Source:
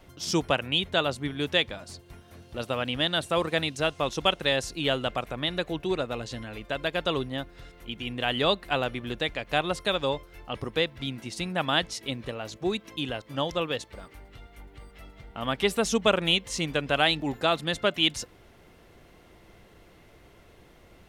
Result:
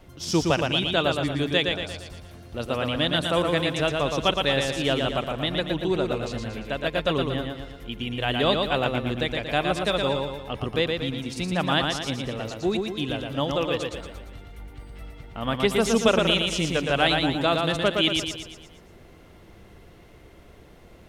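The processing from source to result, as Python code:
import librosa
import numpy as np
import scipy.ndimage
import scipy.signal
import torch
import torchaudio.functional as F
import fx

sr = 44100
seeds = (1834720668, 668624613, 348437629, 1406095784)

p1 = fx.low_shelf(x, sr, hz=480.0, db=4.5)
y = p1 + fx.echo_feedback(p1, sr, ms=116, feedback_pct=49, wet_db=-4, dry=0)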